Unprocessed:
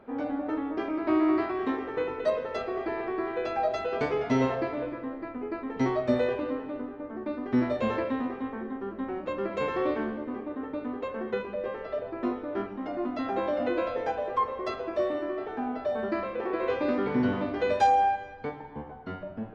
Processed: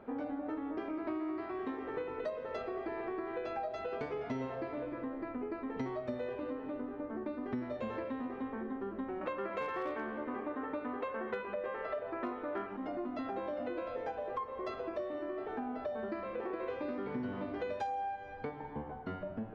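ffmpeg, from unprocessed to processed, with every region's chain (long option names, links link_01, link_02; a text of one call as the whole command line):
ffmpeg -i in.wav -filter_complex "[0:a]asettb=1/sr,asplit=3[link_01][link_02][link_03];[link_01]atrim=end=9.214[link_04];[link_02]atrim=start=9.21:end=12.77,asetpts=PTS-STARTPTS,afade=type=in:duration=0.004:curve=qsin,afade=type=out:start_time=3.556:duration=0.004:curve=qsin,equalizer=frequency=1500:width=0.37:gain=11.5,asoftclip=type=hard:threshold=-15dB[link_05];[link_03]atrim=start=12.766[link_06];[link_04][link_05]acrossfade=duration=0.004:curve1=hsin:curve2=qsin[link_07];[link_07][link_06]acrossfade=duration=0.004:curve1=qsin:curve2=hsin,acompressor=threshold=-36dB:ratio=6,highshelf=frequency=3700:gain=-6" out.wav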